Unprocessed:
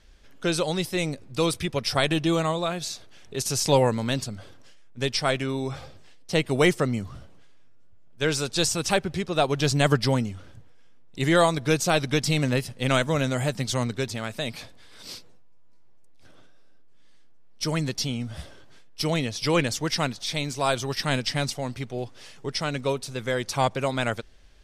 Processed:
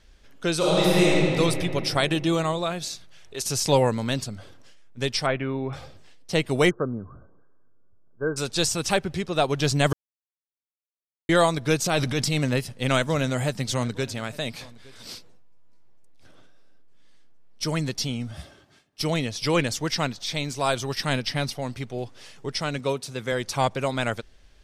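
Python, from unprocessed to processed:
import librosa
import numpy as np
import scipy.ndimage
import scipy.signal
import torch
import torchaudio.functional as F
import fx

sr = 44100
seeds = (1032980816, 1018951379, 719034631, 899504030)

y = fx.reverb_throw(x, sr, start_s=0.57, length_s=0.79, rt60_s=2.9, drr_db=-7.5)
y = fx.peak_eq(y, sr, hz=fx.line((2.94, 580.0), (3.42, 140.0)), db=-11.5, octaves=1.8, at=(2.94, 3.42), fade=0.02)
y = fx.lowpass(y, sr, hz=2600.0, slope=24, at=(5.26, 5.73))
y = fx.cheby_ripple(y, sr, hz=1600.0, ripple_db=6, at=(6.69, 8.36), fade=0.02)
y = fx.transient(y, sr, attack_db=-7, sustain_db=7, at=(11.84, 12.38))
y = fx.echo_single(y, sr, ms=863, db=-22.5, at=(13.07, 15.13), fade=0.02)
y = fx.notch_comb(y, sr, f0_hz=490.0, at=(18.31, 19.01))
y = fx.peak_eq(y, sr, hz=9900.0, db=-11.0, octaves=0.22, at=(19.92, 20.49))
y = fx.peak_eq(y, sr, hz=7400.0, db=-10.5, octaves=0.39, at=(21.13, 21.62))
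y = fx.highpass(y, sr, hz=90.0, slope=12, at=(22.79, 23.32))
y = fx.edit(y, sr, fx.silence(start_s=9.93, length_s=1.36), tone=tone)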